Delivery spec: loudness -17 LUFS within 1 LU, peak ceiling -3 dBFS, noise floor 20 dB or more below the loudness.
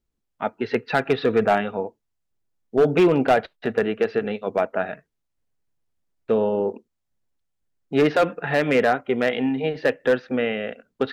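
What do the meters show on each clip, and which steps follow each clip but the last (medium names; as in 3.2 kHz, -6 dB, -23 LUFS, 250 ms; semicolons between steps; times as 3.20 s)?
clipped samples 0.6%; clipping level -11.0 dBFS; loudness -22.5 LUFS; peak level -11.0 dBFS; loudness target -17.0 LUFS
-> clip repair -11 dBFS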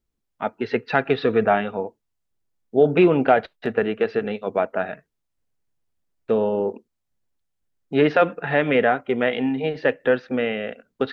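clipped samples 0.0%; loudness -22.0 LUFS; peak level -4.0 dBFS; loudness target -17.0 LUFS
-> trim +5 dB; peak limiter -3 dBFS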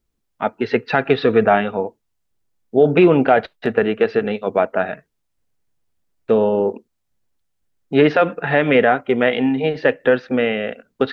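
loudness -17.5 LUFS; peak level -3.0 dBFS; noise floor -73 dBFS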